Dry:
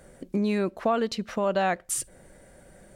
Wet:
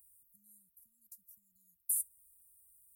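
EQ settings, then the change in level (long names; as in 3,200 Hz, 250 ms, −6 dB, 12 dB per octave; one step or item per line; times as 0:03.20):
inverse Chebyshev band-stop filter 460–3,100 Hz, stop band 80 dB
spectral tilt +4 dB per octave
low-shelf EQ 390 Hz −9.5 dB
−3.0 dB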